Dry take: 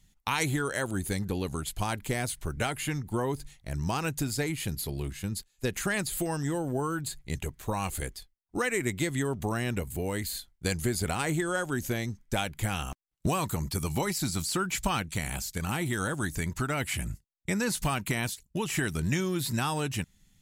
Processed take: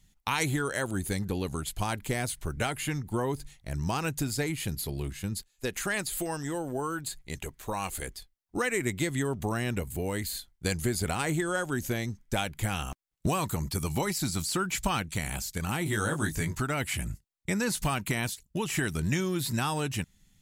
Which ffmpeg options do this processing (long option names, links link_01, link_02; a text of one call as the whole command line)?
ffmpeg -i in.wav -filter_complex "[0:a]asettb=1/sr,asplit=3[link_01][link_02][link_03];[link_01]atrim=end=5.504[link_04];[link_02]atrim=start=5.5:end=8.08,asetpts=PTS-STARTPTS,afade=type=in:duration=0.004:curve=qsin,afade=type=out:start_time=2.576:duration=0.004:curve=qsin,equalizer=frequency=98:width_type=o:width=2.7:gain=-7[link_05];[link_03]atrim=start=8.076[link_06];[link_04][link_05]acrossfade=duration=0.004:curve1=hsin:curve2=qsin[link_07];[link_07][link_06]acrossfade=duration=0.004:curve1=qsin:curve2=hsin,asettb=1/sr,asplit=3[link_08][link_09][link_10];[link_08]atrim=end=15.844[link_11];[link_09]atrim=start=15.84:end=16.6,asetpts=PTS-STARTPTS,afade=type=in:duration=0.004:curve=qsin,afade=type=out:start_time=0.756:duration=0.004:curve=qsin,asplit=2[link_12][link_13];[link_13]adelay=19,volume=-3.5dB[link_14];[link_12][link_14]amix=inputs=2:normalize=0,atrim=end_sample=33516[link_15];[link_10]atrim=start=16.596[link_16];[link_11][link_15]acrossfade=duration=0.004:curve1=hsin:curve2=qsin[link_17];[link_17][link_16]acrossfade=duration=0.004:curve1=qsin:curve2=hsin" out.wav